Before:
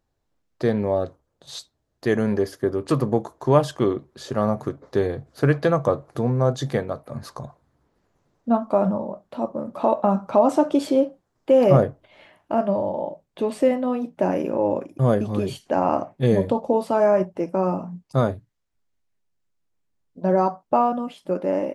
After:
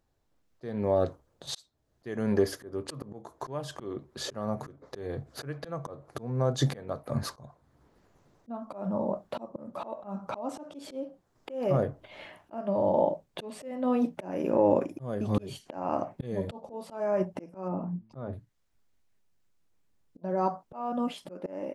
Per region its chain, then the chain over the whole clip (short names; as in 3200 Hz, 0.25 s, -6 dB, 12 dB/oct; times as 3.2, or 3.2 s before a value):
17.68–18.33 tape spacing loss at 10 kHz 34 dB + de-hum 110.5 Hz, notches 3
whole clip: compressor 4:1, threshold -21 dBFS; auto swell 0.494 s; AGC gain up to 4 dB